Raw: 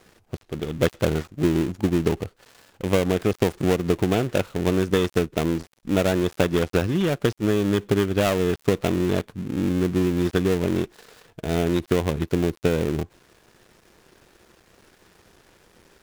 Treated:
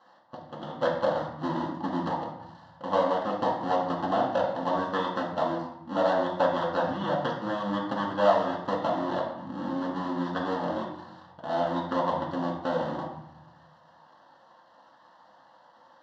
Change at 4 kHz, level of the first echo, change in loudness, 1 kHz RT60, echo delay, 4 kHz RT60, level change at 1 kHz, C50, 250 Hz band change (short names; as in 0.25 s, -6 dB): -7.0 dB, none, -5.5 dB, 0.95 s, none, 0.60 s, +6.0 dB, 4.5 dB, -9.0 dB